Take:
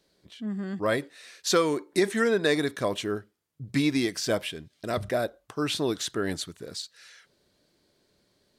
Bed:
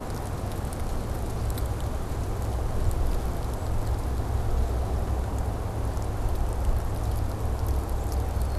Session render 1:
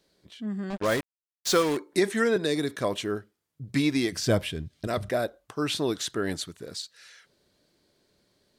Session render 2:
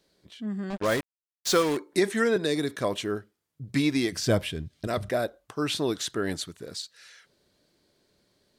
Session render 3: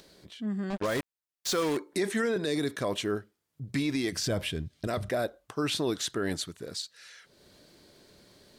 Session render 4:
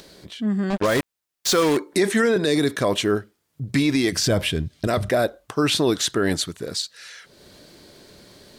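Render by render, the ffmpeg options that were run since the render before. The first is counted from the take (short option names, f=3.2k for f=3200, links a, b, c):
-filter_complex "[0:a]asettb=1/sr,asplit=3[a][b][c];[a]atrim=end=0.704[d];[b]atrim=start=0.7:end=1.77,asetpts=PTS-STARTPTS,afade=t=in:d=0.004:c=qsin,afade=t=out:st=1.066:d=0.004:c=qsin,acrusher=bits=4:mix=0:aa=0.5[e];[c]atrim=start=1.766[f];[d][e]acrossfade=d=0.004:c1=hsin:c2=qsin[g];[g][f]acrossfade=d=0.004:c1=qsin:c2=hsin,asettb=1/sr,asplit=3[h][i][j];[h]atrim=end=2.364[k];[i]atrim=start=2.36:end=2.76,asetpts=PTS-STARTPTS,afade=t=in:d=0.004:c=qsin,afade=t=out:st=0.396:d=0.004:c=qsin,acrossover=split=490|3000[l][m][n];[m]acompressor=threshold=-36dB:ratio=6:attack=3.2:release=140:knee=2.83:detection=peak[o];[l][o][n]amix=inputs=3:normalize=0[p];[j]atrim=start=2.756[q];[k][p]acrossfade=d=0.004:c1=hsin:c2=qsin[r];[r][q]acrossfade=d=0.004:c1=qsin:c2=hsin,asettb=1/sr,asplit=3[s][t][u];[s]atrim=end=4.124[v];[t]atrim=start=4.12:end=4.87,asetpts=PTS-STARTPTS,afade=t=in:d=0.004:c=qsin,afade=t=out:st=0.746:d=0.004:c=qsin,equalizer=f=70:t=o:w=2.8:g=15[w];[u]atrim=start=4.866[x];[v][w]acrossfade=d=0.004:c1=hsin:c2=qsin[y];[y][x]acrossfade=d=0.004:c1=qsin:c2=hsin"
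-af anull
-af "acompressor=mode=upward:threshold=-46dB:ratio=2.5,alimiter=limit=-20dB:level=0:latency=1:release=25"
-af "volume=9.5dB"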